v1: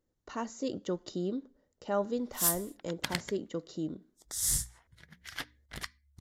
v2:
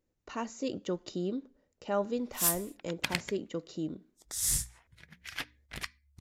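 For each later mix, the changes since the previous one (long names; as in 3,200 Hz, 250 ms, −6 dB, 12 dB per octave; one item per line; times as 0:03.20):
master: add parametric band 2,500 Hz +9.5 dB 0.29 octaves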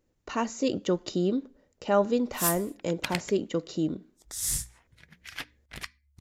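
speech +7.5 dB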